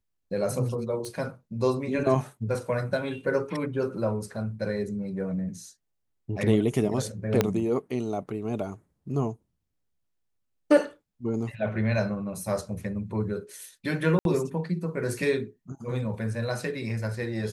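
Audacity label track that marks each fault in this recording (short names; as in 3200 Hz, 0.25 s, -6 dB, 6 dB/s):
1.050000	1.050000	pop -23 dBFS
7.410000	7.410000	pop -7 dBFS
14.190000	14.250000	gap 62 ms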